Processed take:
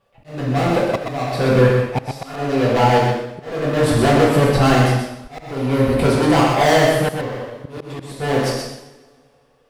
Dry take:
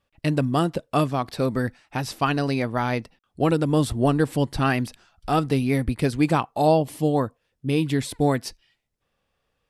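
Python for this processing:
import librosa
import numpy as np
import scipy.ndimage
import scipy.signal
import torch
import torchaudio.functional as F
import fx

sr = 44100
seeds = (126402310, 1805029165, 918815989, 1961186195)

p1 = fx.peak_eq(x, sr, hz=610.0, db=12.5, octaves=1.8)
p2 = np.clip(p1, -10.0 ** (-18.0 / 20.0), 10.0 ** (-18.0 / 20.0))
p3 = fx.rev_double_slope(p2, sr, seeds[0], early_s=0.74, late_s=2.1, knee_db=-23, drr_db=-4.5)
p4 = fx.auto_swell(p3, sr, attack_ms=608.0)
p5 = p4 + fx.echo_single(p4, sr, ms=125, db=-5.5, dry=0)
y = p5 * librosa.db_to_amplitude(1.0)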